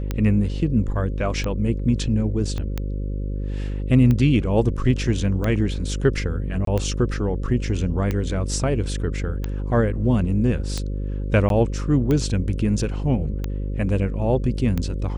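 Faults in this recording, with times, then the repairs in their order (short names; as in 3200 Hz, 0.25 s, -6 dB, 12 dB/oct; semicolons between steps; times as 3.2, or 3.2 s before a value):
buzz 50 Hz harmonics 11 -26 dBFS
tick 45 rpm -12 dBFS
2.58 pop -17 dBFS
6.65–6.67 gap 23 ms
11.49–11.5 gap 12 ms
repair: de-click; de-hum 50 Hz, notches 11; interpolate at 6.65, 23 ms; interpolate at 11.49, 12 ms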